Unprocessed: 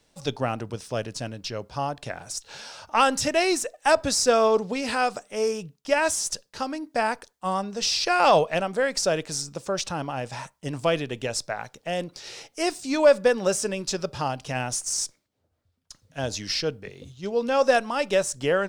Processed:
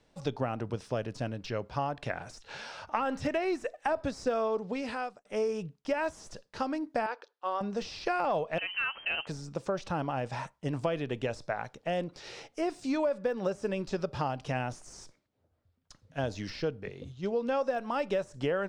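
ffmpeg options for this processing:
-filter_complex "[0:a]asettb=1/sr,asplit=3[s0][s1][s2];[s0]atrim=end=1.404[s3];[s1]atrim=start=1.4:end=3.88,asetpts=PTS-STARTPTS,afade=t=in:d=0.004:c=qsin,afade=t=out:st=2.476:d=0.004:c=qsin,equalizer=f=2100:t=o:w=1.3:g=4[s4];[s2]atrim=start=3.876[s5];[s3][s4]acrossfade=d=0.004:c1=hsin:c2=qsin[s6];[s6][s5]acrossfade=d=0.004:c1=qsin:c2=hsin,asettb=1/sr,asplit=3[s7][s8][s9];[s7]atrim=end=7.064[s10];[s8]atrim=start=7.06:end=7.61,asetpts=PTS-STARTPTS,afade=t=in:d=0.004:c=qsin,afade=t=out:st=0.546:d=0.004:c=qsin,highpass=f=400:w=0.5412,highpass=f=400:w=1.3066,equalizer=f=690:t=q:w=4:g=-7,equalizer=f=1000:t=q:w=4:g=-3,equalizer=f=2000:t=q:w=4:g=-7,lowpass=f=5000:w=0.5412,lowpass=f=5000:w=1.3066[s11];[s9]atrim=start=7.606[s12];[s10][s11]acrossfade=d=0.004:c1=hsin:c2=qsin[s13];[s13][s12]acrossfade=d=0.004:c1=qsin:c2=hsin,asettb=1/sr,asplit=3[s14][s15][s16];[s14]atrim=end=8.584[s17];[s15]atrim=start=8.58:end=9.27,asetpts=PTS-STARTPTS,afade=t=in:d=0.004:c=qsin,afade=t=out:st=0.686:d=0.004:c=qsin,lowpass=f=2700:t=q:w=0.5098,lowpass=f=2700:t=q:w=0.6013,lowpass=f=2700:t=q:w=0.9,lowpass=f=2700:t=q:w=2.563,afreqshift=-3200[s18];[s16]atrim=start=9.266[s19];[s17][s18]acrossfade=d=0.004:c1=hsin:c2=qsin[s20];[s20][s19]acrossfade=d=0.004:c1=qsin:c2=hsin,asplit=2[s21][s22];[s21]atrim=end=5.25,asetpts=PTS-STARTPTS,afade=t=out:st=4.47:d=0.78[s23];[s22]atrim=start=5.25,asetpts=PTS-STARTPTS,afade=t=in:d=0.004:c=hsin[s24];[s23][s24]concat=n=2:v=0:a=1,deesser=0.8,aemphasis=mode=reproduction:type=75kf,acompressor=threshold=0.0447:ratio=6"

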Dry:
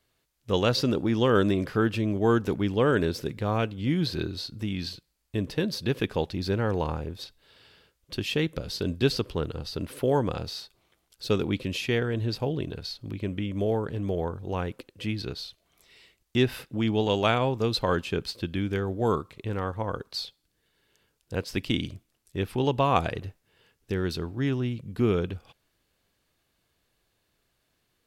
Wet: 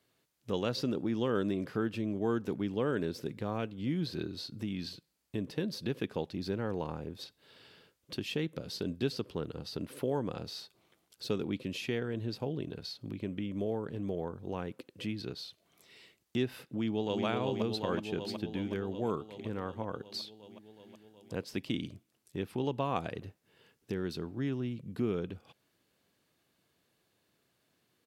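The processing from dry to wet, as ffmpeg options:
-filter_complex "[0:a]asplit=2[s0][s1];[s1]afade=t=in:st=16.68:d=0.01,afade=t=out:st=17.25:d=0.01,aecho=0:1:370|740|1110|1480|1850|2220|2590|2960|3330|3700|4070|4440:0.668344|0.467841|0.327489|0.229242|0.160469|0.112329|0.07863|0.055041|0.0385287|0.0269701|0.0188791|0.0132153[s2];[s0][s2]amix=inputs=2:normalize=0,highpass=170,lowshelf=f=320:g=8,acompressor=threshold=0.00708:ratio=1.5,volume=0.794"

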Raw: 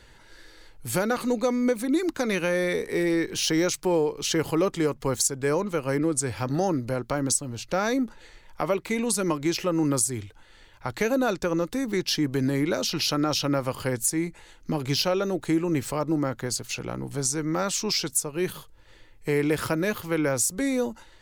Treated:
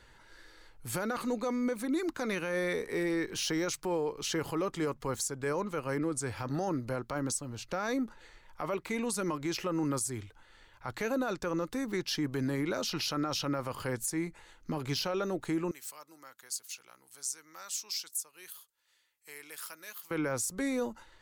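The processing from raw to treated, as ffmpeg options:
-filter_complex "[0:a]asettb=1/sr,asplit=3[s0][s1][s2];[s0]atrim=end=15.714[s3];[s1]atrim=start=15.71:end=20.11,asetpts=PTS-STARTPTS,afade=t=in:d=0.004:c=qsin,afade=t=out:st=4.396:d=0.004:c=qsin,aderivative[s4];[s2]atrim=start=20.106[s5];[s3][s4]acrossfade=d=0.004:c1=hsin:c2=qsin[s6];[s6][s5]acrossfade=d=0.004:c1=qsin:c2=hsin,equalizer=f=1200:t=o:w=1.2:g=5,alimiter=limit=0.141:level=0:latency=1:release=11,volume=0.447"

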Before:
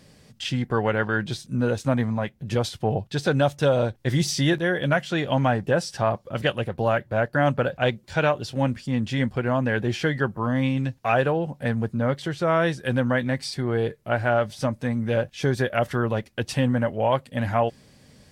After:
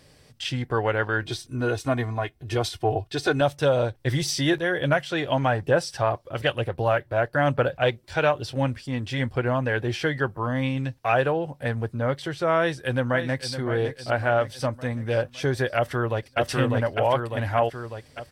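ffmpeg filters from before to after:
-filter_complex "[0:a]asettb=1/sr,asplit=3[s0][s1][s2];[s0]atrim=end=1.224[s3];[s1]atrim=start=1.22:end=3.41,asetpts=PTS-STARTPTS,afade=t=in:d=0.004:c=qsin,afade=t=out:st=2.186:d=0.004:c=qsin,aecho=1:1:2.8:0.65,atrim=end_sample=96579[s4];[s2]atrim=start=3.406[s5];[s3][s4]acrossfade=d=0.004:c1=hsin:c2=qsin[s6];[s6][s5]acrossfade=d=0.004:c1=qsin:c2=hsin,asettb=1/sr,asplit=3[s7][s8][s9];[s7]atrim=end=3.964[s10];[s8]atrim=start=3.96:end=9.73,asetpts=PTS-STARTPTS,afade=t=in:d=0.004:c=qsin,afade=t=out:st=5.766:d=0.004:c=qsin,aphaser=in_gain=1:out_gain=1:delay=3.1:decay=0.22:speed=1.1:type=sinusoidal[s11];[s9]atrim=start=9.726[s12];[s10][s11]acrossfade=d=0.004:c1=hsin:c2=qsin[s13];[s13][s12]acrossfade=d=0.004:c1=qsin:c2=hsin,asplit=2[s14][s15];[s15]afade=t=in:st=12.57:d=0.01,afade=t=out:st=13.54:d=0.01,aecho=0:1:560|1120|1680|2240|2800|3360:0.298538|0.164196|0.0903078|0.0496693|0.0273181|0.015025[s16];[s14][s16]amix=inputs=2:normalize=0,asplit=2[s17][s18];[s18]afade=t=in:st=15.76:d=0.01,afade=t=out:st=16.39:d=0.01,aecho=0:1:600|1200|1800|2400|3000|3600|4200|4800|5400:0.891251|0.534751|0.32085|0.19251|0.115506|0.0693037|0.0415822|0.0249493|0.0149696[s19];[s17][s19]amix=inputs=2:normalize=0,equalizer=f=200:t=o:w=0.47:g=-13,bandreject=f=6800:w=11"

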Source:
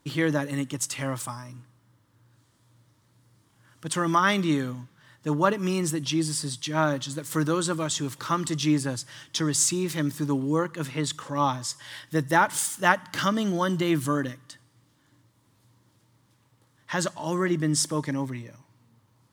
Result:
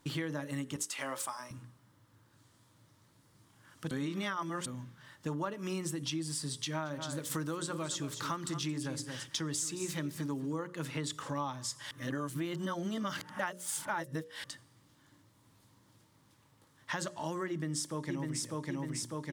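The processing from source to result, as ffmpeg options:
-filter_complex "[0:a]asettb=1/sr,asplit=3[s0][s1][s2];[s0]atrim=end=0.764[s3];[s1]atrim=start=0.76:end=1.51,asetpts=PTS-STARTPTS,afade=t=in:d=0.004:c=qsin,afade=t=out:st=0.746:d=0.004:c=qsin,highpass=410[s4];[s2]atrim=start=1.506[s5];[s3][s4]acrossfade=d=0.004:c1=hsin:c2=qsin[s6];[s6][s5]acrossfade=d=0.004:c1=qsin:c2=hsin,asettb=1/sr,asplit=3[s7][s8][s9];[s7]atrim=end=6.594[s10];[s8]atrim=start=6.59:end=10.53,asetpts=PTS-STARTPTS,afade=t=in:d=0.004:c=qsin,afade=t=out:st=3.936:d=0.004:c=qsin,aecho=1:1:222:0.237,atrim=end_sample=173754[s11];[s9]atrim=start=10.526[s12];[s10][s11]acrossfade=d=0.004:c1=hsin:c2=qsin[s13];[s13][s12]acrossfade=d=0.004:c1=qsin:c2=hsin,asplit=2[s14][s15];[s15]afade=t=in:st=17.49:d=0.01,afade=t=out:st=18.43:d=0.01,aecho=0:1:600|1200|1800|2400|3000|3600|4200:0.749894|0.374947|0.187474|0.0937368|0.0468684|0.0234342|0.0117171[s16];[s14][s16]amix=inputs=2:normalize=0,asplit=5[s17][s18][s19][s20][s21];[s17]atrim=end=3.912[s22];[s18]atrim=start=3.908:end=4.662,asetpts=PTS-STARTPTS,areverse[s23];[s19]atrim=start=4.658:end=11.912[s24];[s20]atrim=start=11.908:end=14.442,asetpts=PTS-STARTPTS,areverse[s25];[s21]atrim=start=14.438[s26];[s22][s23]acrossfade=d=0.004:c1=hsin:c2=hsin[s27];[s27][s24]acrossfade=d=0.004:c1=hsin:c2=hsin[s28];[s28][s25]acrossfade=d=0.004:c1=hsin:c2=hsin[s29];[s29][s26]acrossfade=d=0.004:c1=hsin:c2=hsin,bandreject=f=60:t=h:w=6,bandreject=f=120:t=h:w=6,bandreject=f=180:t=h:w=6,bandreject=f=240:t=h:w=6,bandreject=f=300:t=h:w=6,bandreject=f=360:t=h:w=6,bandreject=f=420:t=h:w=6,bandreject=f=480:t=h:w=6,bandreject=f=540:t=h:w=6,bandreject=f=600:t=h:w=6,acompressor=threshold=0.02:ratio=6"

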